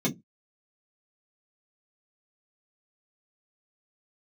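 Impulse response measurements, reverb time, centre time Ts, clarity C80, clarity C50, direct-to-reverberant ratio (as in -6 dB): 0.15 s, 15 ms, 31.0 dB, 21.5 dB, -5.0 dB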